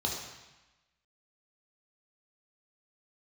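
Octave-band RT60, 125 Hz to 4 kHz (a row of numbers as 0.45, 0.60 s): 1.1, 1.1, 0.95, 1.1, 1.2, 1.1 s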